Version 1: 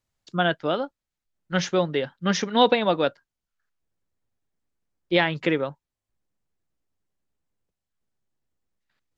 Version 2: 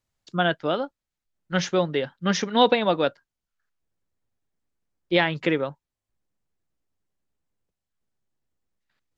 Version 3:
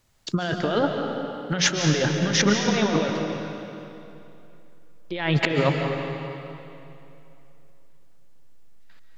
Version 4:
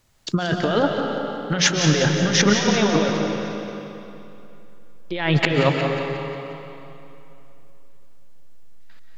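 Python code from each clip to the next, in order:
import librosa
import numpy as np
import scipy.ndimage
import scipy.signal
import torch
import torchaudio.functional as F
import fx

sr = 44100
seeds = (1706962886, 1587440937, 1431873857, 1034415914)

y1 = x
y2 = fx.over_compress(y1, sr, threshold_db=-32.0, ratio=-1.0)
y2 = fx.rev_freeverb(y2, sr, rt60_s=2.9, hf_ratio=0.85, predelay_ms=100, drr_db=2.5)
y2 = y2 * librosa.db_to_amplitude(7.5)
y3 = fx.echo_feedback(y2, sr, ms=179, feedback_pct=56, wet_db=-10.5)
y3 = y3 * librosa.db_to_amplitude(3.0)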